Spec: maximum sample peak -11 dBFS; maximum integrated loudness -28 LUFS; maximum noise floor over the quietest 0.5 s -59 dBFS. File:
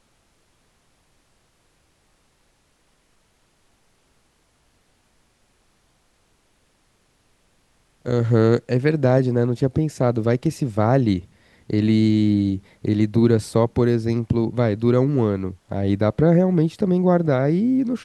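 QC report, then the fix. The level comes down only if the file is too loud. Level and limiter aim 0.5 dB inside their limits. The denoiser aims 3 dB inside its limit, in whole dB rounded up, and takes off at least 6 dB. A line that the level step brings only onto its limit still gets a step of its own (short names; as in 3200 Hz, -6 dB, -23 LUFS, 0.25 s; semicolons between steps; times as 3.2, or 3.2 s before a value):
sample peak -4.5 dBFS: fail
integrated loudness -20.0 LUFS: fail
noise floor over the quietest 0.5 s -63 dBFS: OK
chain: gain -8.5 dB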